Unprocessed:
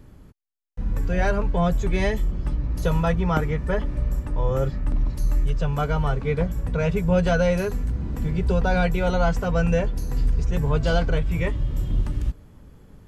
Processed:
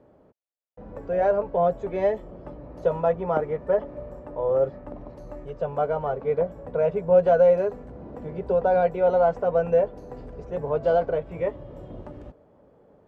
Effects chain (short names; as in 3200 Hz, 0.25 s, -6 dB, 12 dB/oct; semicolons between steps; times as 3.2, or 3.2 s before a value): band-pass 590 Hz, Q 2.5; gain +7 dB